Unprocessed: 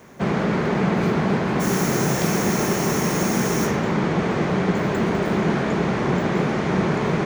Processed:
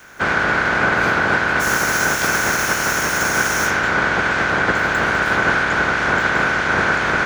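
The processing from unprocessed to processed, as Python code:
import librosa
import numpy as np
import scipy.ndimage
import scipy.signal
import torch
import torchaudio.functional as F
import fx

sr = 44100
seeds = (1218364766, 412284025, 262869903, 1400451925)

y = fx.spec_clip(x, sr, under_db=19)
y = fx.peak_eq(y, sr, hz=1500.0, db=14.5, octaves=0.23)
y = fx.doppler_dist(y, sr, depth_ms=0.11)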